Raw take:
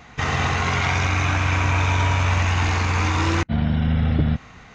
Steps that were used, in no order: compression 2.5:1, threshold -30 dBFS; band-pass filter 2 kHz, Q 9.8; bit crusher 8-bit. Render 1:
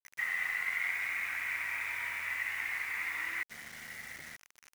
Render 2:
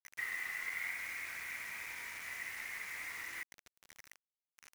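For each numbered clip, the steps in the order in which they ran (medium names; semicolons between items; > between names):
band-pass filter > compression > bit crusher; compression > band-pass filter > bit crusher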